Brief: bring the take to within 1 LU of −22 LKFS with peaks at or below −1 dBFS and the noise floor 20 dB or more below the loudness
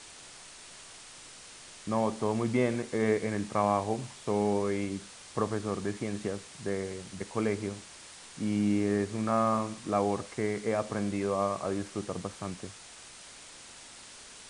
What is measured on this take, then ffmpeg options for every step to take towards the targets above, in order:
background noise floor −50 dBFS; target noise floor −52 dBFS; integrated loudness −31.5 LKFS; sample peak −13.0 dBFS; target loudness −22.0 LKFS
→ -af "afftdn=noise_reduction=6:noise_floor=-50"
-af "volume=9.5dB"

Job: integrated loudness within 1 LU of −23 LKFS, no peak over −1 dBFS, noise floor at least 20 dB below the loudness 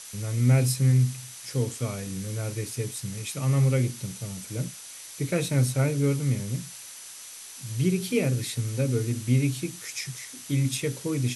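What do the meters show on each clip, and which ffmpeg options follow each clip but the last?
interfering tone 6,000 Hz; level of the tone −50 dBFS; background noise floor −43 dBFS; target noise floor −47 dBFS; integrated loudness −27.0 LKFS; sample peak −11.0 dBFS; target loudness −23.0 LKFS
→ -af "bandreject=frequency=6000:width=30"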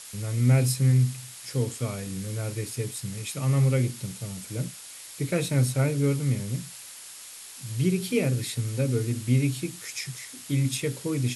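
interfering tone none found; background noise floor −44 dBFS; target noise floor −47 dBFS
→ -af "afftdn=noise_reduction=6:noise_floor=-44"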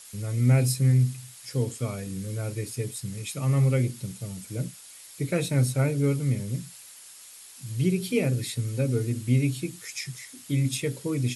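background noise floor −48 dBFS; integrated loudness −27.0 LKFS; sample peak −11.0 dBFS; target loudness −23.0 LKFS
→ -af "volume=4dB"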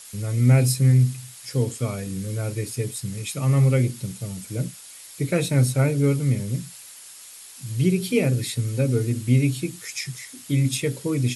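integrated loudness −23.0 LKFS; sample peak −7.0 dBFS; background noise floor −44 dBFS

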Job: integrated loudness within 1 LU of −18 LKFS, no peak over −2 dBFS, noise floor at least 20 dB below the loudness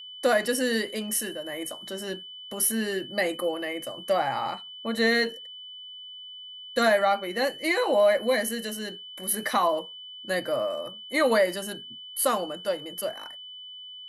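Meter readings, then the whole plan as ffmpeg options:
interfering tone 3,000 Hz; level of the tone −40 dBFS; integrated loudness −26.5 LKFS; sample peak −11.5 dBFS; target loudness −18.0 LKFS
→ -af "bandreject=frequency=3000:width=30"
-af "volume=8.5dB"

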